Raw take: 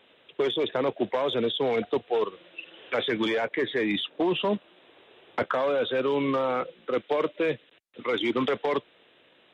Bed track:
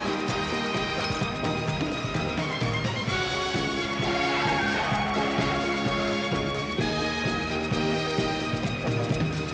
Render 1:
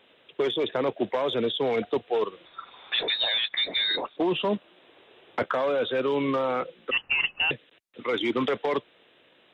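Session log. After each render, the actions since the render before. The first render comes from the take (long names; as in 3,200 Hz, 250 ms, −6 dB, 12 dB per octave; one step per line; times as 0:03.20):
0:02.45–0:04.17: voice inversion scrambler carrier 4,000 Hz
0:06.91–0:07.51: voice inversion scrambler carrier 3,200 Hz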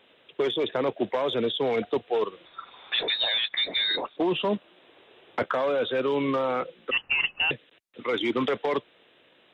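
no processing that can be heard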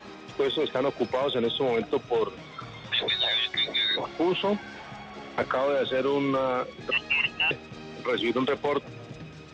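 mix in bed track −16 dB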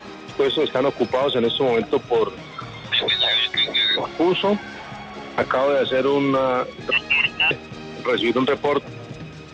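level +6.5 dB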